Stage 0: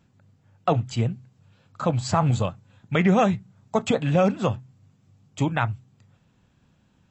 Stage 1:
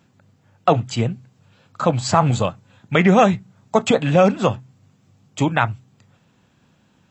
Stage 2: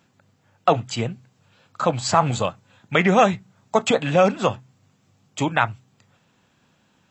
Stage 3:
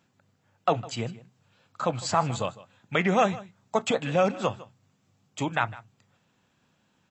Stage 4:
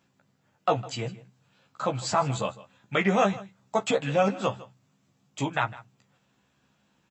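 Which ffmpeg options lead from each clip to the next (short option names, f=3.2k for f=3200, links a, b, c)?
-af "highpass=f=180:p=1,volume=7dB"
-af "lowshelf=f=350:g=-7"
-af "aecho=1:1:155:0.112,volume=-6.5dB"
-filter_complex "[0:a]asplit=2[a][b];[b]adelay=15,volume=-4dB[c];[a][c]amix=inputs=2:normalize=0,volume=-1.5dB"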